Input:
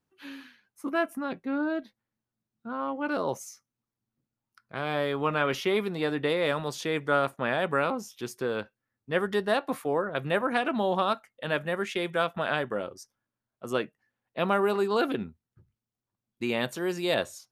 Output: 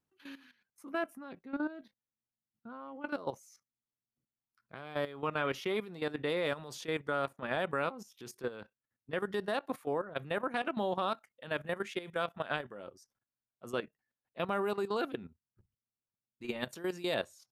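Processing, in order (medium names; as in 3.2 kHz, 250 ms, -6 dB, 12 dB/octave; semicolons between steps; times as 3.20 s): level held to a coarse grid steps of 14 dB; trim -4 dB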